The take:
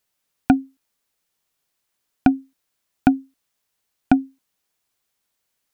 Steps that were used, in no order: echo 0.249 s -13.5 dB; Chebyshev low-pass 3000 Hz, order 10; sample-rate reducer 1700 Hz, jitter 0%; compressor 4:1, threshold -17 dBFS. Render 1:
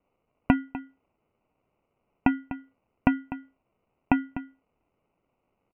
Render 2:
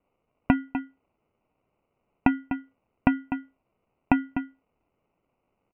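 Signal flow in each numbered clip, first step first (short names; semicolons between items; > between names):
compressor > echo > sample-rate reducer > Chebyshev low-pass; echo > sample-rate reducer > Chebyshev low-pass > compressor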